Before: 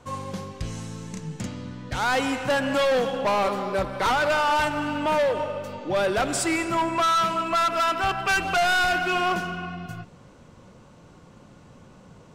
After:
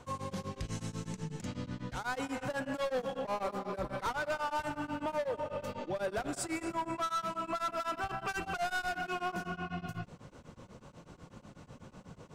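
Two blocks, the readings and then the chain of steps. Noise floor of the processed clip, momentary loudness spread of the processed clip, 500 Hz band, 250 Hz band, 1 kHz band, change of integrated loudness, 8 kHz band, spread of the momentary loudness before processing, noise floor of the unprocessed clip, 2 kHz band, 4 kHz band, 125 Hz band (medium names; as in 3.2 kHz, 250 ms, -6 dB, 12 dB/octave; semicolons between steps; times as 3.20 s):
-58 dBFS, 19 LU, -12.0 dB, -10.0 dB, -12.5 dB, -13.0 dB, -12.0 dB, 13 LU, -51 dBFS, -14.0 dB, -15.5 dB, -7.5 dB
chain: dynamic bell 3 kHz, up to -5 dB, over -40 dBFS, Q 1; peak limiter -28 dBFS, peak gain reduction 9.5 dB; tremolo of two beating tones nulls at 8.1 Hz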